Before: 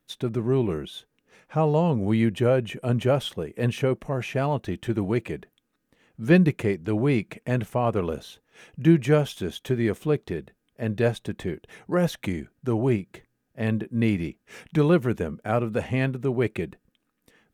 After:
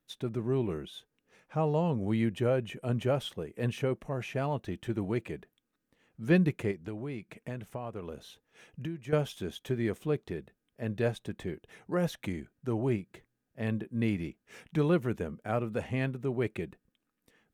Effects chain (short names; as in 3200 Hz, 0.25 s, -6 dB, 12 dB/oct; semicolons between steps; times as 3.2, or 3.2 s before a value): 6.71–9.13 compressor 5:1, threshold -29 dBFS, peak gain reduction 15.5 dB; gain -7 dB